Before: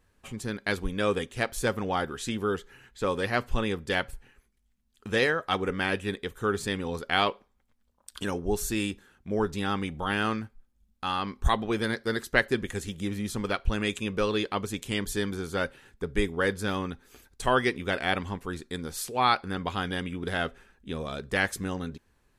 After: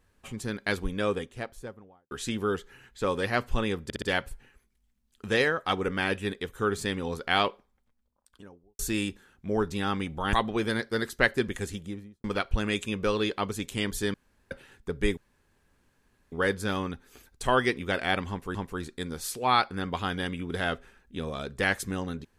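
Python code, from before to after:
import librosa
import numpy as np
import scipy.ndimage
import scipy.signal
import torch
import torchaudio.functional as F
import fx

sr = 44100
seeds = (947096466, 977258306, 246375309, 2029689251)

y = fx.studio_fade_out(x, sr, start_s=0.74, length_s=1.37)
y = fx.studio_fade_out(y, sr, start_s=7.29, length_s=1.32)
y = fx.studio_fade_out(y, sr, start_s=12.77, length_s=0.61)
y = fx.edit(y, sr, fx.stutter(start_s=3.84, slice_s=0.06, count=4),
    fx.cut(start_s=10.15, length_s=1.32),
    fx.room_tone_fill(start_s=15.28, length_s=0.37),
    fx.insert_room_tone(at_s=16.31, length_s=1.15),
    fx.repeat(start_s=18.28, length_s=0.26, count=2), tone=tone)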